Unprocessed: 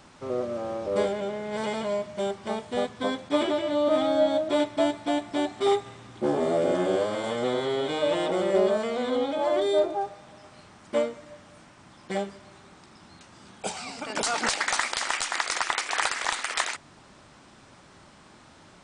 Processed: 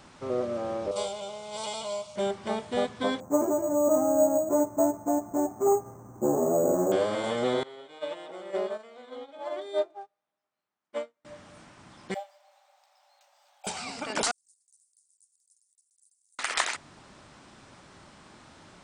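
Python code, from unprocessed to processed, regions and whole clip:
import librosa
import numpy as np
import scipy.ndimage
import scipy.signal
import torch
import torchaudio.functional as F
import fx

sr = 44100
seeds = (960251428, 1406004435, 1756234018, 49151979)

y = fx.chain(x, sr, fx.tilt_shelf(db=-8.0, hz=1200.0),
    fx.fixed_phaser(hz=730.0, stages=4), at=(0.91, 2.16))
y = fx.chain(y, sr, fx.lowpass(hz=1100.0, slope=24),
    fx.resample_bad(factor=6, down='filtered', up='hold'), at=(3.2, 6.92))
y = fx.chain(y, sr, fx.highpass(hz=610.0, slope=6),
    fx.high_shelf(hz=3500.0, db=-5.0),
    fx.upward_expand(threshold_db=-45.0, expansion=2.5), at=(7.63, 11.25))
y = fx.chain(y, sr, fx.cheby_ripple_highpass(hz=550.0, ripple_db=9),
    fx.peak_eq(hz=2000.0, db=-14.0, octaves=1.5),
    fx.resample_linear(factor=2), at=(12.14, 13.67))
y = fx.chain(y, sr, fx.cheby2_highpass(hz=2800.0, order=4, stop_db=80),
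    fx.air_absorb(metres=63.0), at=(14.31, 16.39))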